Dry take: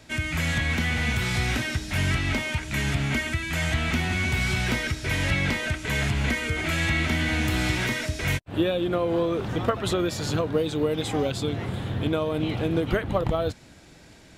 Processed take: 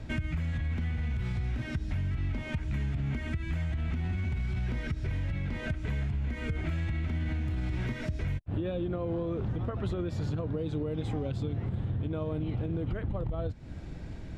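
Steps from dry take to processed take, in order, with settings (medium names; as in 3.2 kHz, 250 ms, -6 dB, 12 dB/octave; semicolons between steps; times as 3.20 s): RIAA curve playback; peak limiter -11 dBFS, peak gain reduction 10 dB; compression, threshold -30 dBFS, peak gain reduction 14.5 dB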